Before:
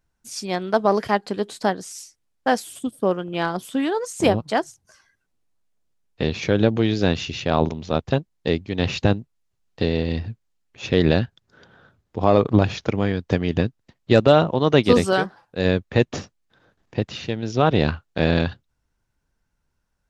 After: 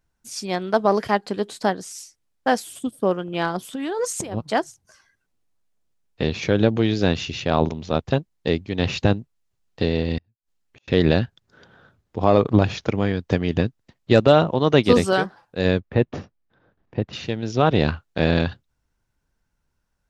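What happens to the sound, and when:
0:03.73–0:04.37: compressor whose output falls as the input rises −27 dBFS
0:10.18–0:10.88: gate with flip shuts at −37 dBFS, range −36 dB
0:15.80–0:17.13: head-to-tape spacing loss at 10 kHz 27 dB

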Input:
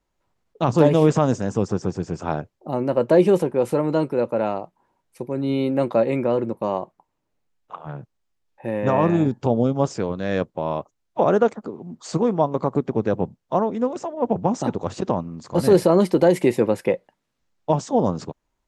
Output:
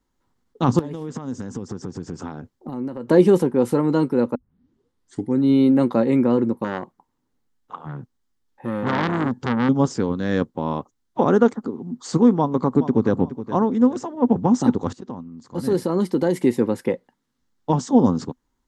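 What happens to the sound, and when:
0:00.79–0:03.08: downward compressor 8 to 1, threshold −29 dBFS
0:04.35: tape start 1.04 s
0:06.64–0:09.69: saturating transformer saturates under 1,700 Hz
0:12.36–0:13.19: delay throw 420 ms, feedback 30%, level −13 dB
0:14.93–0:17.79: fade in, from −16 dB
whole clip: thirty-one-band graphic EQ 250 Hz +9 dB, 630 Hz −11 dB, 2,500 Hz −8 dB; level +2 dB

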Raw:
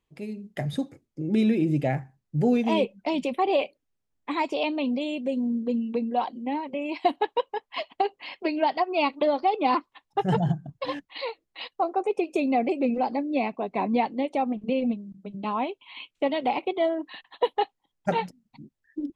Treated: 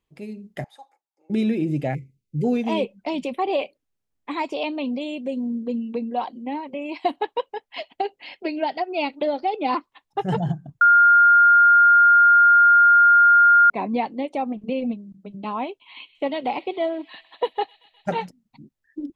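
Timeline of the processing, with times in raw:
0:00.64–0:01.30: four-pole ladder high-pass 790 Hz, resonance 80%
0:01.94–0:02.44: time-frequency box erased 530–2,000 Hz
0:07.46–0:09.69: parametric band 1,100 Hz −15 dB 0.21 octaves
0:10.81–0:13.70: beep over 1,410 Hz −10 dBFS
0:15.67–0:18.25: delay with a high-pass on its return 128 ms, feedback 80%, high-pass 2,700 Hz, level −16 dB

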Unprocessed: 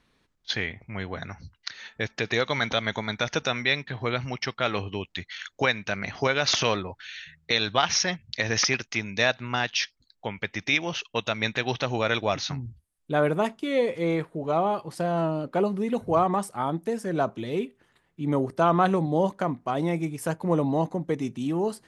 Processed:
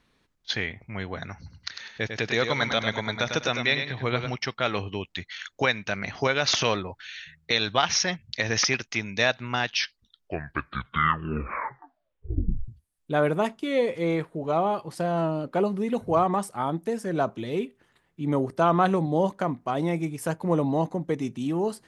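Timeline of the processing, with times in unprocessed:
0:01.36–0:04.35: repeating echo 100 ms, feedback 27%, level −7 dB
0:09.67: tape stop 3.01 s

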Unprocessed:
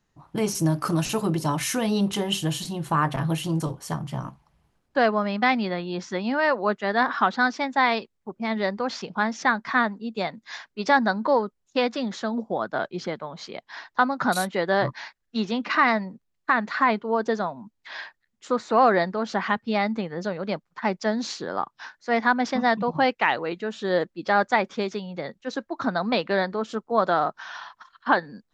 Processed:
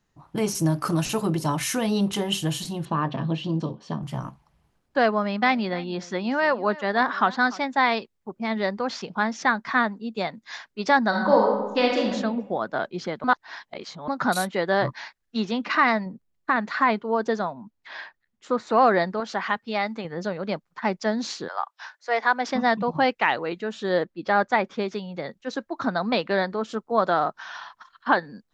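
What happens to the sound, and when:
0:02.85–0:04.03: loudspeaker in its box 150–4,400 Hz, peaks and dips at 220 Hz +8 dB, 810 Hz −5 dB, 1,400 Hz −9 dB, 2,100 Hz −9 dB
0:05.12–0:07.60: single-tap delay 295 ms −19.5 dB
0:11.08–0:12.10: thrown reverb, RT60 1.1 s, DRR −1.5 dB
0:13.24–0:14.08: reverse
0:16.06–0:16.56: tilt shelving filter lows +3.5 dB, about 730 Hz
0:17.53–0:18.67: high-shelf EQ 4,100 Hz −7.5 dB
0:19.20–0:20.05: low-shelf EQ 300 Hz −10 dB
0:21.47–0:22.47: high-pass filter 760 Hz → 300 Hz 24 dB per octave
0:24.00–0:24.93: high-shelf EQ 6,400 Hz −11.5 dB

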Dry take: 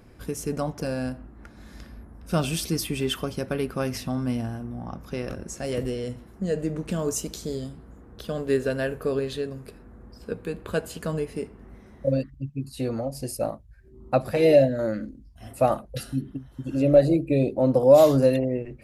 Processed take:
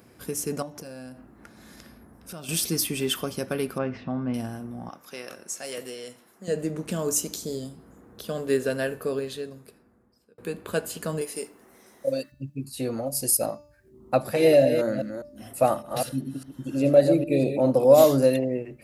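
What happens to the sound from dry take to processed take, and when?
0:00.62–0:02.49: downward compressor 4 to 1, threshold −38 dBFS
0:03.78–0:04.34: Bessel low-pass filter 1,900 Hz, order 4
0:04.89–0:06.48: high-pass filter 950 Hz 6 dB per octave
0:07.35–0:08.27: dynamic equaliser 1,800 Hz, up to −5 dB, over −56 dBFS, Q 0.96
0:08.83–0:10.38: fade out
0:11.21–0:12.32: bass and treble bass −14 dB, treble +10 dB
0:13.06–0:13.46: high-shelf EQ 5,600 Hz +11 dB
0:14.21–0:18.05: delay that plays each chunk backwards 202 ms, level −7.5 dB
whole clip: Bessel high-pass filter 150 Hz, order 2; high-shelf EQ 7,300 Hz +10 dB; hum removal 293.8 Hz, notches 23

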